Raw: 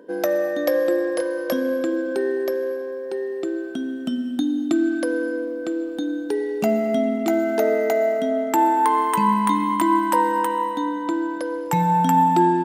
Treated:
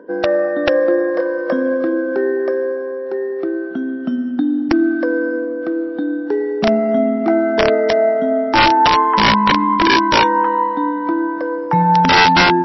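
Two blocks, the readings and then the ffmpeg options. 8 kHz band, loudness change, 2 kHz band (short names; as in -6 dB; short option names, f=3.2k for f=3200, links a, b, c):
n/a, +6.0 dB, +12.5 dB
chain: -af "highpass=f=97:w=0.5412,highpass=f=97:w=1.3066,highshelf=f=2.2k:t=q:w=1.5:g=-10.5,areverse,acompressor=mode=upward:threshold=-29dB:ratio=2.5,areverse,aeval=exprs='(mod(3.16*val(0)+1,2)-1)/3.16':c=same,volume=5.5dB" -ar 16000 -c:a libmp3lame -b:a 24k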